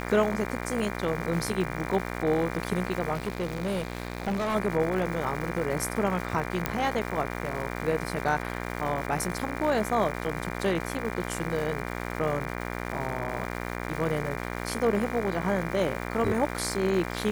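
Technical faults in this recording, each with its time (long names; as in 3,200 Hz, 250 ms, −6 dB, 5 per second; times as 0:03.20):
mains buzz 60 Hz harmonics 40 −34 dBFS
surface crackle 520 per second −35 dBFS
0:03.13–0:04.56: clipping −25 dBFS
0:06.66: click −10 dBFS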